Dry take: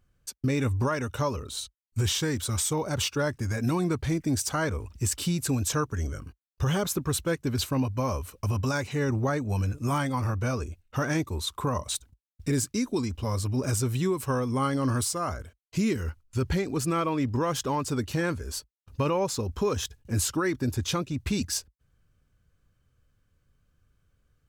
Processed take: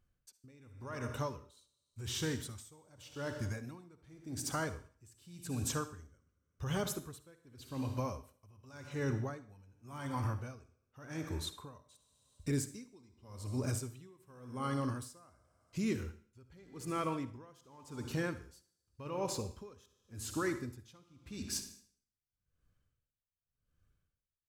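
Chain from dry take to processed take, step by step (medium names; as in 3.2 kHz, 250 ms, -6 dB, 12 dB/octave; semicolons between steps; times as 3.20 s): on a send at -8.5 dB: reverberation RT60 1.0 s, pre-delay 50 ms; on the sum: logarithmic tremolo 0.88 Hz, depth 26 dB; trim -8 dB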